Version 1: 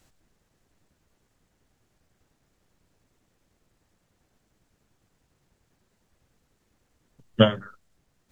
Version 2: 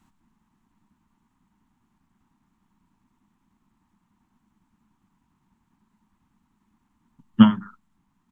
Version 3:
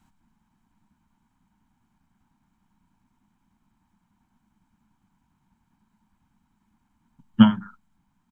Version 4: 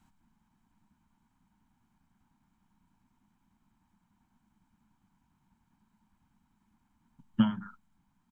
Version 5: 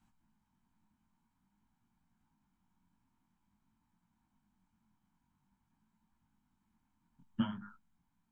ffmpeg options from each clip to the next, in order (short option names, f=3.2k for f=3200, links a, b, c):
-af "firequalizer=gain_entry='entry(130,0);entry(210,14);entry(510,-18);entry(930,12);entry(1500,0);entry(3200,-2);entry(4800,-8);entry(6800,-5)':delay=0.05:min_phase=1,volume=-3dB"
-af "aecho=1:1:1.3:0.36,volume=-1dB"
-af "acompressor=threshold=-18dB:ratio=6,volume=-3dB"
-af "flanger=delay=17.5:depth=5.8:speed=0.5,volume=-3.5dB"